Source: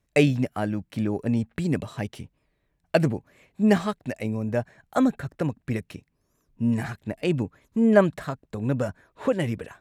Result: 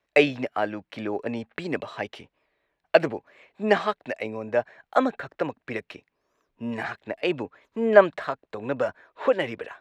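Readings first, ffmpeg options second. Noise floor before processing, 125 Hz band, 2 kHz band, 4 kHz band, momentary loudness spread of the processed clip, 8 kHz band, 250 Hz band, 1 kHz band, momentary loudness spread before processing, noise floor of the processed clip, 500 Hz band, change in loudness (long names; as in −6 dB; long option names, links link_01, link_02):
−74 dBFS, −13.0 dB, +4.5 dB, +3.0 dB, 13 LU, can't be measured, −7.0 dB, +4.5 dB, 13 LU, −81 dBFS, +3.0 dB, −0.5 dB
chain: -filter_complex "[0:a]acrossover=split=370 4600:gain=0.1 1 0.0891[link_01][link_02][link_03];[link_01][link_02][link_03]amix=inputs=3:normalize=0,volume=5dB"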